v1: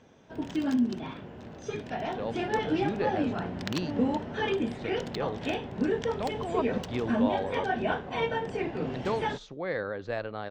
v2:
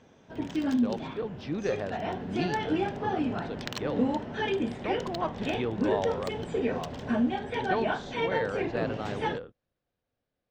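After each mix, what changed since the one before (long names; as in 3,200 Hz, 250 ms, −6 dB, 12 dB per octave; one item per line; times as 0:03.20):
speech: entry −1.35 s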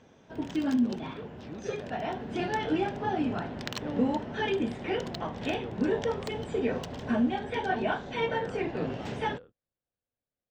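speech −10.5 dB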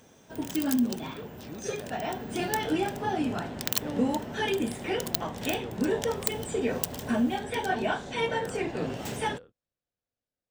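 master: remove high-frequency loss of the air 170 metres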